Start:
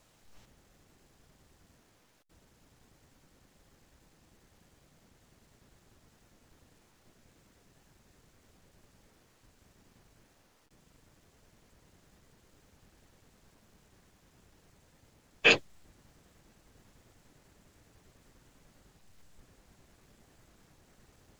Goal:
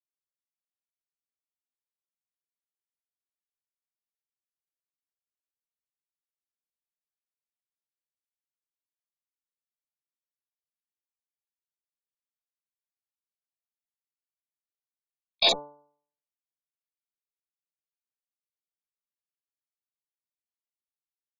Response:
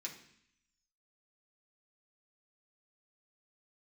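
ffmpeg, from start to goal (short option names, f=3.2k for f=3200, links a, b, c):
-af "afftfilt=real='re*gte(hypot(re,im),0.0891)':imag='im*gte(hypot(re,im),0.0891)':win_size=1024:overlap=0.75,bandreject=f=100.4:t=h:w=4,bandreject=f=200.8:t=h:w=4,bandreject=f=301.2:t=h:w=4,bandreject=f=401.6:t=h:w=4,bandreject=f=502:t=h:w=4,bandreject=f=602.4:t=h:w=4,bandreject=f=702.8:t=h:w=4,bandreject=f=803.2:t=h:w=4,bandreject=f=903.6:t=h:w=4,bandreject=f=1.004k:t=h:w=4,alimiter=limit=-18dB:level=0:latency=1:release=54,asetrate=64194,aresample=44100,atempo=0.686977,volume=7.5dB"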